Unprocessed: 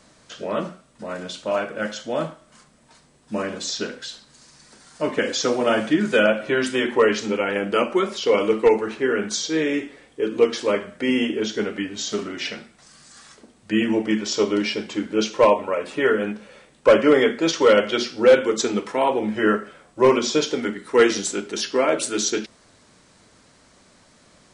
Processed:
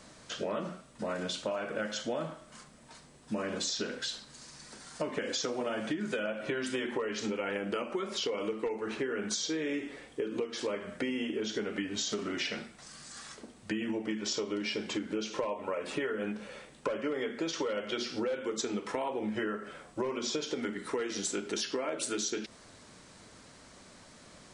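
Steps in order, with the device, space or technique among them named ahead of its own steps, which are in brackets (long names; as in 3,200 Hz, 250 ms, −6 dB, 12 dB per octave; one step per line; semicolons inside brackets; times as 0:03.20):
serial compression, peaks first (downward compressor 6 to 1, threshold −25 dBFS, peak gain reduction 15 dB; downward compressor 3 to 1, threshold −32 dBFS, peak gain reduction 8.5 dB)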